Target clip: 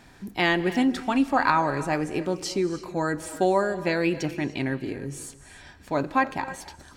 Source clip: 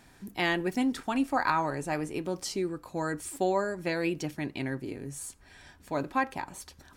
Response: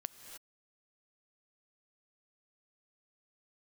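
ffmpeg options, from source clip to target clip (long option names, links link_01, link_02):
-filter_complex "[0:a]asplit=2[link_01][link_02];[1:a]atrim=start_sample=2205,lowpass=7600[link_03];[link_02][link_03]afir=irnorm=-1:irlink=0,volume=2.5dB[link_04];[link_01][link_04]amix=inputs=2:normalize=0"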